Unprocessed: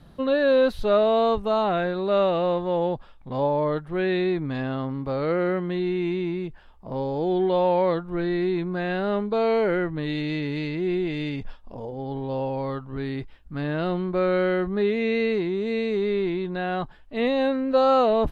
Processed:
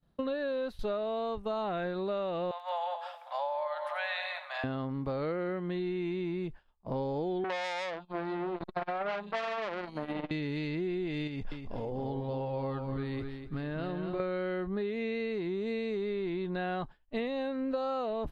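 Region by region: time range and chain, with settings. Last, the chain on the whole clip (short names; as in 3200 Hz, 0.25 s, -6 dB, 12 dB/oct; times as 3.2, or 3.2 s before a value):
2.51–4.64 steep high-pass 590 Hz 96 dB/oct + upward compressor, threshold -33 dBFS + split-band echo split 1600 Hz, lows 0.195 s, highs 88 ms, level -9 dB
7.44–10.31 band shelf 770 Hz +13 dB 1 oct + three bands offset in time mids, highs, lows 0.37/0.49 s, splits 150/3000 Hz + core saturation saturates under 2600 Hz
11.27–14.2 compressor 5:1, threshold -31 dBFS + feedback echo 0.246 s, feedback 27%, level -6 dB
whole clip: compressor 20:1, threshold -30 dBFS; expander -36 dBFS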